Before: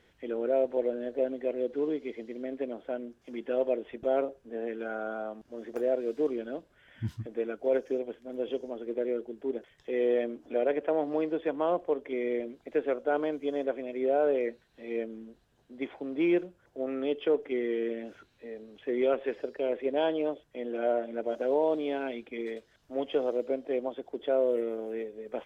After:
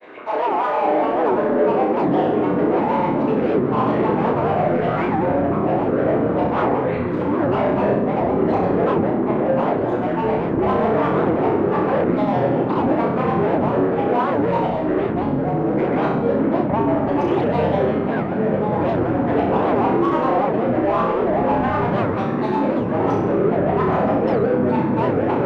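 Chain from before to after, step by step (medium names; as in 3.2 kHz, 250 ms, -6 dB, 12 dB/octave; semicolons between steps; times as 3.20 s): spectral sustain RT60 0.59 s; peaking EQ 370 Hz +4 dB 2.1 oct; saturation -28 dBFS, distortion -7 dB; overdrive pedal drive 38 dB, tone 1 kHz, clips at -11.5 dBFS; granulator, pitch spread up and down by 12 st; three-band isolator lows -13 dB, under 230 Hz, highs -18 dB, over 2.7 kHz; on a send: flutter echo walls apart 5.5 m, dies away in 0.73 s; on the sum: ever faster or slower copies 356 ms, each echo -6 st, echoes 3; warped record 78 rpm, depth 250 cents; trim -2.5 dB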